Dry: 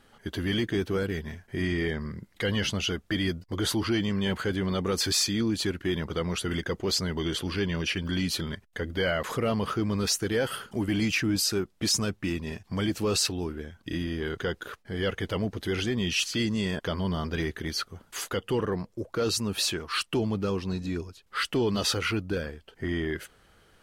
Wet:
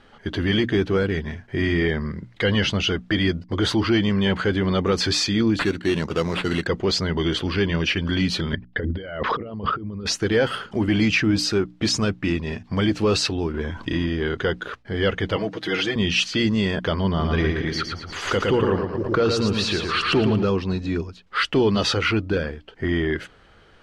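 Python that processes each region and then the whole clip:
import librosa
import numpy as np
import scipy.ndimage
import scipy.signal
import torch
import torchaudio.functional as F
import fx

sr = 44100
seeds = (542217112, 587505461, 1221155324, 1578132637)

y = fx.chain(x, sr, fx.highpass(hz=100.0, slope=12),
    fx.sample_hold(seeds[0], rate_hz=6000.0, jitter_pct=0), at=(5.59, 6.67))
y = fx.chain(y, sr, fx.envelope_sharpen(power=1.5),
    fx.cheby1_lowpass(hz=5300.0, order=5),
    fx.over_compress(threshold_db=-33.0, ratio=-0.5), at=(8.53, 10.06))
y = fx.chain(y, sr, fx.peak_eq(hz=1000.0, db=12.5, octaves=0.26),
    fx.env_flatten(amount_pct=50), at=(13.54, 14.06))
y = fx.chain(y, sr, fx.highpass(hz=420.0, slope=6),
    fx.comb(ms=6.3, depth=0.87), at=(15.36, 15.96))
y = fx.chain(y, sr, fx.high_shelf(hz=5200.0, db=-6.5),
    fx.echo_feedback(ms=112, feedback_pct=43, wet_db=-5),
    fx.pre_swell(db_per_s=71.0), at=(17.08, 20.43))
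y = scipy.signal.sosfilt(scipy.signal.butter(2, 4300.0, 'lowpass', fs=sr, output='sos'), y)
y = fx.hum_notches(y, sr, base_hz=60, count=5)
y = y * 10.0 ** (7.5 / 20.0)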